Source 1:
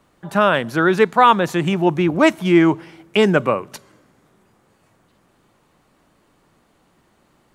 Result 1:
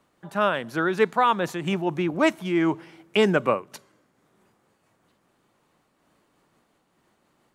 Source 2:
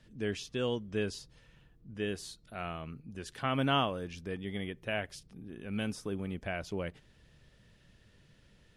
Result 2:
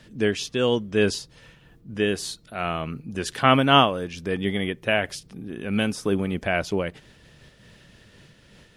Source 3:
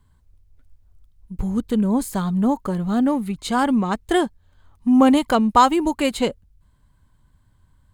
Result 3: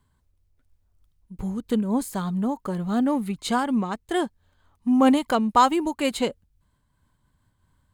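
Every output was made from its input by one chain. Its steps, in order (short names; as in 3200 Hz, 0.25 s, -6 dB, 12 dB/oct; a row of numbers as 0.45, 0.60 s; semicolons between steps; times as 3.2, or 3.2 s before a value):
low shelf 88 Hz -10 dB; noise-modulated level, depth 60%; match loudness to -24 LUFS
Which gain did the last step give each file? -3.0, +16.5, 0.0 dB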